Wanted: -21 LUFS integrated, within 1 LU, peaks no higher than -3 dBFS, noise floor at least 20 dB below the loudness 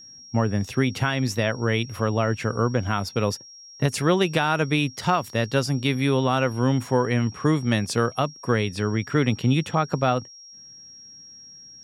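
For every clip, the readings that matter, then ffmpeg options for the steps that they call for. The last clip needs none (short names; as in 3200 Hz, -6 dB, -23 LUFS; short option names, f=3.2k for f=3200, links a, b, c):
steady tone 5600 Hz; tone level -43 dBFS; loudness -23.5 LUFS; peak -8.5 dBFS; loudness target -21.0 LUFS
-> -af "bandreject=f=5.6k:w=30"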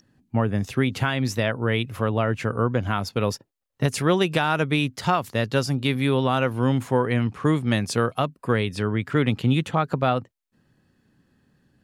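steady tone none; loudness -23.5 LUFS; peak -9.0 dBFS; loudness target -21.0 LUFS
-> -af "volume=2.5dB"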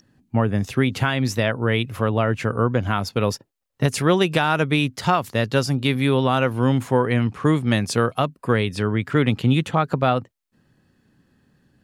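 loudness -21.0 LUFS; peak -6.5 dBFS; noise floor -70 dBFS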